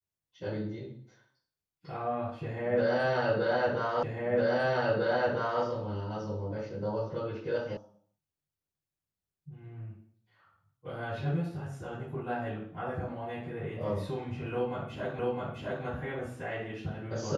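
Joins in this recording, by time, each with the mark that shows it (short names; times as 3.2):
4.03 repeat of the last 1.6 s
7.77 sound cut off
15.19 repeat of the last 0.66 s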